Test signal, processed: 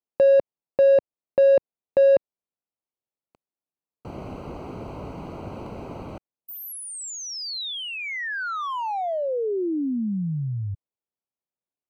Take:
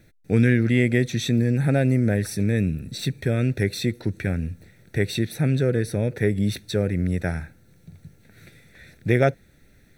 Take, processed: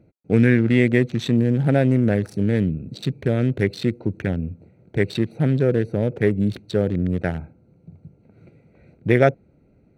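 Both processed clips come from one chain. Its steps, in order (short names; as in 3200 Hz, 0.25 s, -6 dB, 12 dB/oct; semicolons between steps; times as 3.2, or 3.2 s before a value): Wiener smoothing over 25 samples; HPF 140 Hz 6 dB/oct; high shelf 5200 Hz -9 dB; gain +4.5 dB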